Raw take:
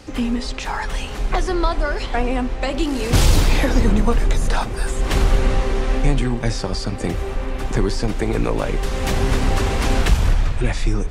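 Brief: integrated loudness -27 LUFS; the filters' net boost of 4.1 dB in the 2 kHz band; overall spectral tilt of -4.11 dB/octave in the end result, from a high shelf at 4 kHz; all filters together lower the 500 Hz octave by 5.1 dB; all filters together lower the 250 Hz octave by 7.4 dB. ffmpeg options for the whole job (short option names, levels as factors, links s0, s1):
-af "equalizer=f=250:t=o:g=-8.5,equalizer=f=500:t=o:g=-4,equalizer=f=2000:t=o:g=3.5,highshelf=f=4000:g=8.5,volume=0.531"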